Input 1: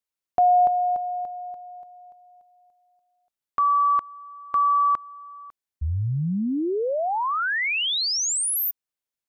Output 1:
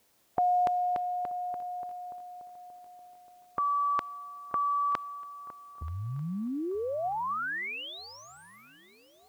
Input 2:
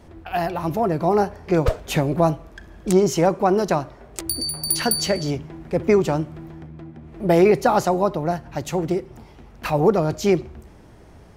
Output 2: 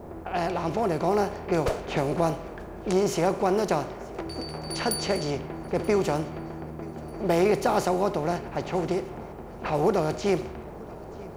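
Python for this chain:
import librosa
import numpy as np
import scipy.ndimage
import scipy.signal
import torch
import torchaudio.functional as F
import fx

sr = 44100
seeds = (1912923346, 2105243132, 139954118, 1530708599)

p1 = fx.bin_compress(x, sr, power=0.6)
p2 = fx.env_lowpass(p1, sr, base_hz=730.0, full_db=-12.0)
p3 = fx.quant_dither(p2, sr, seeds[0], bits=10, dither='triangular')
p4 = fx.low_shelf(p3, sr, hz=110.0, db=-6.0)
p5 = p4 + fx.echo_swing(p4, sr, ms=1241, ratio=3, feedback_pct=37, wet_db=-22.5, dry=0)
y = p5 * 10.0 ** (-8.5 / 20.0)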